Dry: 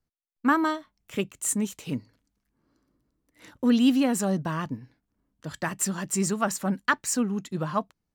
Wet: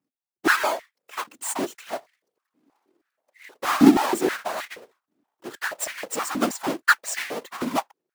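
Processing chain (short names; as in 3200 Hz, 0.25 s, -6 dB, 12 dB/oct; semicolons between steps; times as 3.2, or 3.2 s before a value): half-waves squared off; whisperiser; stepped high-pass 6.3 Hz 270–2000 Hz; gain -5 dB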